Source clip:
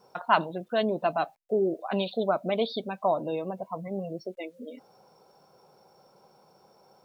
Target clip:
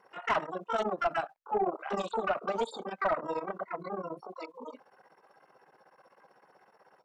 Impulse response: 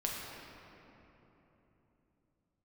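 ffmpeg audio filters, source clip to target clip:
-filter_complex "[0:a]tremolo=f=16:d=0.92,asplit=2[link_01][link_02];[link_02]asetrate=88200,aresample=44100,atempo=0.5,volume=-3dB[link_03];[link_01][link_03]amix=inputs=2:normalize=0,asplit=2[link_04][link_05];[link_05]highpass=frequency=720:poles=1,volume=17dB,asoftclip=type=tanh:threshold=-8dB[link_06];[link_04][link_06]amix=inputs=2:normalize=0,lowpass=frequency=1200:poles=1,volume=-6dB,volume=-7dB"

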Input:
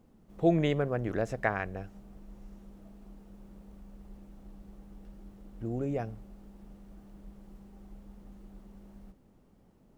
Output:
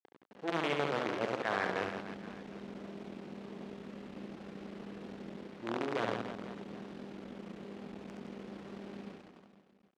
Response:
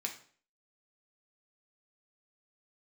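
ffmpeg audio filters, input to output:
-filter_complex "[0:a]agate=range=-33dB:threshold=-52dB:ratio=3:detection=peak,equalizer=frequency=930:width_type=o:width=1.7:gain=-8.5,areverse,acompressor=threshold=-43dB:ratio=16,areverse,asoftclip=type=tanh:threshold=-40dB,acrusher=bits=8:dc=4:mix=0:aa=0.000001,highpass=270,lowpass=3100,asplit=2[link_01][link_02];[link_02]aecho=0:1:70|168|305.2|497.3|766.2:0.631|0.398|0.251|0.158|0.1[link_03];[link_01][link_03]amix=inputs=2:normalize=0,volume=16dB"

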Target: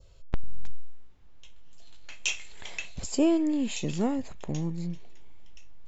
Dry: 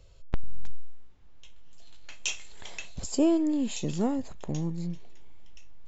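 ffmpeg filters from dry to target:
ffmpeg -i in.wav -af "adynamicequalizer=threshold=0.00224:dfrequency=2300:dqfactor=1.7:tfrequency=2300:tqfactor=1.7:attack=5:release=100:ratio=0.375:range=3:mode=boostabove:tftype=bell" out.wav

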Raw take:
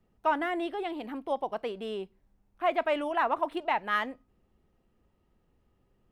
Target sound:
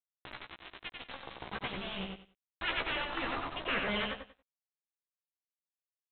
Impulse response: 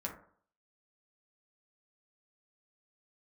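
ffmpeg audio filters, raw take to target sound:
-filter_complex "[0:a]afftfilt=real='re*lt(hypot(re,im),0.0708)':imag='im*lt(hypot(re,im),0.0708)':win_size=1024:overlap=0.75,lowshelf=frequency=160:width_type=q:width=1.5:gain=12,dynaudnorm=framelen=220:gausssize=13:maxgain=7dB,aresample=8000,aeval=exprs='val(0)*gte(abs(val(0)),0.0158)':channel_layout=same,aresample=44100,asplit=2[link_01][link_02];[link_02]adelay=15,volume=-3.5dB[link_03];[link_01][link_03]amix=inputs=2:normalize=0,asplit=2[link_04][link_05];[link_05]aecho=0:1:93|186|279:0.631|0.133|0.0278[link_06];[link_04][link_06]amix=inputs=2:normalize=0,adynamicequalizer=threshold=0.00631:dfrequency=1700:dqfactor=0.7:tfrequency=1700:tqfactor=0.7:attack=5:release=100:ratio=0.375:range=2.5:mode=cutabove:tftype=highshelf"

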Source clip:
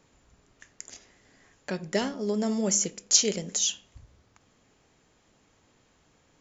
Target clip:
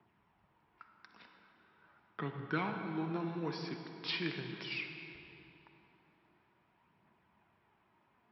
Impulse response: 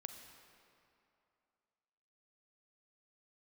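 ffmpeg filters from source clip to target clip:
-filter_complex "[0:a]acrossover=split=210|1900[link_01][link_02][link_03];[link_01]acompressor=threshold=-46dB:ratio=6[link_04];[link_04][link_02][link_03]amix=inputs=3:normalize=0,aphaser=in_gain=1:out_gain=1:delay=3.3:decay=0.37:speed=0.55:type=triangular,asplit=2[link_05][link_06];[link_06]acrusher=bits=6:mix=0:aa=0.000001,volume=-12dB[link_07];[link_05][link_07]amix=inputs=2:normalize=0,asetrate=33957,aresample=44100,highpass=130,equalizer=frequency=270:width_type=q:width=4:gain=-5,equalizer=frequency=510:width_type=q:width=4:gain=-9,equalizer=frequency=960:width_type=q:width=4:gain=8,lowpass=frequency=2800:width=0.5412,lowpass=frequency=2800:width=1.3066[link_08];[1:a]atrim=start_sample=2205,asetrate=33957,aresample=44100[link_09];[link_08][link_09]afir=irnorm=-1:irlink=0,volume=-4dB"

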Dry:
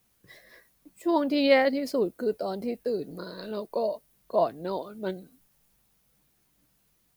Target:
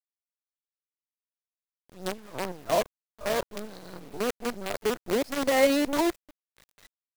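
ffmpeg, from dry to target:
ffmpeg -i in.wav -af "areverse,aemphasis=mode=reproduction:type=cd,acrusher=bits=5:dc=4:mix=0:aa=0.000001,volume=-1.5dB" out.wav

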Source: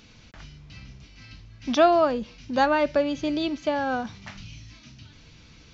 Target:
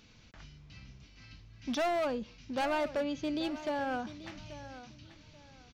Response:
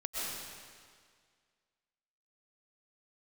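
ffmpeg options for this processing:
-filter_complex "[0:a]volume=20.5dB,asoftclip=hard,volume=-20.5dB,asplit=2[link_01][link_02];[link_02]aecho=0:1:834|1668|2502:0.188|0.0471|0.0118[link_03];[link_01][link_03]amix=inputs=2:normalize=0,volume=-7.5dB"

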